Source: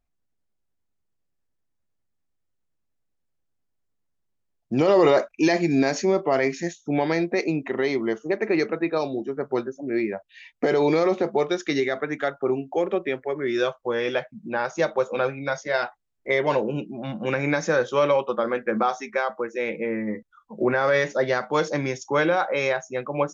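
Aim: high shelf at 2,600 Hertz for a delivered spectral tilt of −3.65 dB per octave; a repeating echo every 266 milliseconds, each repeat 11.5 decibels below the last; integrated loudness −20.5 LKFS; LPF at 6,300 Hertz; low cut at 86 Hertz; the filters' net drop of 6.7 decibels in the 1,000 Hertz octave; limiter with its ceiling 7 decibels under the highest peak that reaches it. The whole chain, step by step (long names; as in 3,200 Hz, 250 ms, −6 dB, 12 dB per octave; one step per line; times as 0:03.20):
high-pass filter 86 Hz
low-pass filter 6,300 Hz
parametric band 1,000 Hz −8.5 dB
high-shelf EQ 2,600 Hz −7 dB
brickwall limiter −16.5 dBFS
repeating echo 266 ms, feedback 27%, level −11.5 dB
level +7 dB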